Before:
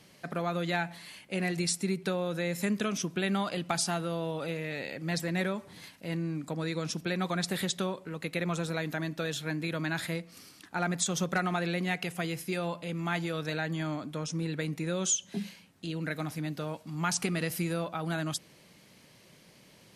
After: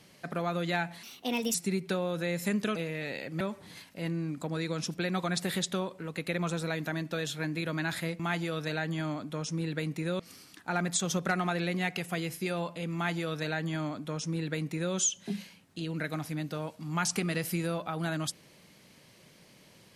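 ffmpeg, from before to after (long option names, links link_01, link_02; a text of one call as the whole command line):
ffmpeg -i in.wav -filter_complex "[0:a]asplit=7[link_01][link_02][link_03][link_04][link_05][link_06][link_07];[link_01]atrim=end=1.034[link_08];[link_02]atrim=start=1.03:end=1.71,asetpts=PTS-STARTPTS,asetrate=58212,aresample=44100,atrim=end_sample=22718,asetpts=PTS-STARTPTS[link_09];[link_03]atrim=start=1.706:end=2.922[link_10];[link_04]atrim=start=4.448:end=5.102[link_11];[link_05]atrim=start=5.468:end=10.262[link_12];[link_06]atrim=start=13.008:end=15.012[link_13];[link_07]atrim=start=10.258[link_14];[link_08][link_09]acrossfade=duration=0.004:curve1=hsin:curve2=hsin[link_15];[link_15][link_10]acrossfade=duration=0.004:curve1=hsin:curve2=hsin[link_16];[link_16][link_11]acrossfade=duration=0.004:curve1=hsin:curve2=hsin[link_17];[link_17][link_12]acrossfade=duration=0.004:curve1=hsin:curve2=hsin[link_18];[link_18][link_13]acrossfade=duration=0.004:curve1=hsin:curve2=hsin[link_19];[link_19][link_14]acrossfade=duration=0.004:curve1=hsin:curve2=hsin" out.wav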